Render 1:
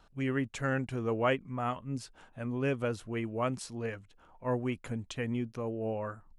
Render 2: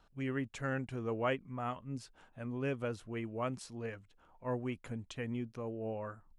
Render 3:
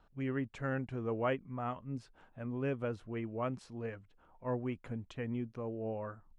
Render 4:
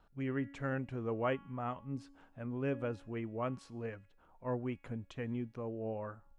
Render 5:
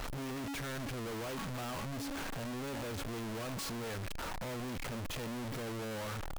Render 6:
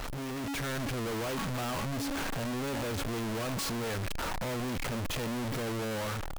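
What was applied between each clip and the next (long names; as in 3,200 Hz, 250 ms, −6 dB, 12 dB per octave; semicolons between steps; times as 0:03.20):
high-shelf EQ 8,100 Hz −3.5 dB; level −5 dB
low-pass filter 1,900 Hz 6 dB per octave; level +1 dB
tuned comb filter 280 Hz, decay 0.92 s, mix 50%; level +5 dB
sign of each sample alone
automatic gain control gain up to 3.5 dB; level +2.5 dB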